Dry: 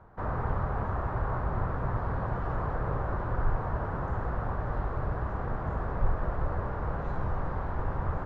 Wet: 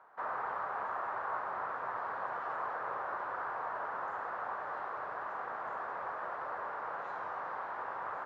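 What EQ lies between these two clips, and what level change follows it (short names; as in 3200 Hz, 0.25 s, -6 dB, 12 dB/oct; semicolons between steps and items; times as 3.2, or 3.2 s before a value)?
HPF 970 Hz 12 dB/oct; high shelf 2300 Hz -7.5 dB; +4.0 dB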